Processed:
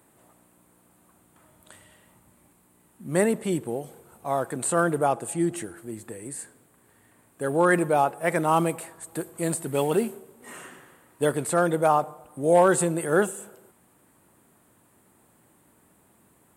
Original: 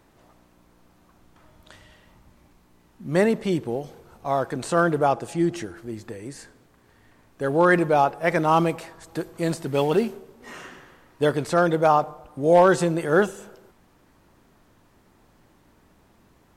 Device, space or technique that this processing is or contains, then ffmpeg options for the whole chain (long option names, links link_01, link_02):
budget condenser microphone: -af "highpass=100,highshelf=frequency=7000:width_type=q:width=3:gain=8.5,volume=-2.5dB"